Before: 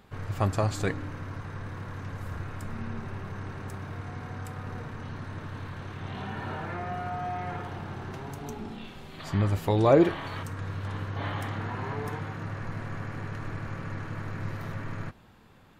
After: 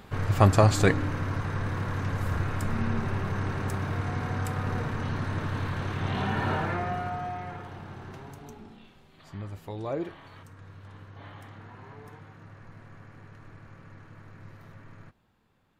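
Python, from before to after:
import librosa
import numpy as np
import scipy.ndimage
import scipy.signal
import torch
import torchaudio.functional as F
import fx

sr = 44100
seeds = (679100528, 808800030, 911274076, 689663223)

y = fx.gain(x, sr, db=fx.line((6.54, 7.5), (7.55, -4.5), (8.18, -4.5), (9.07, -13.0)))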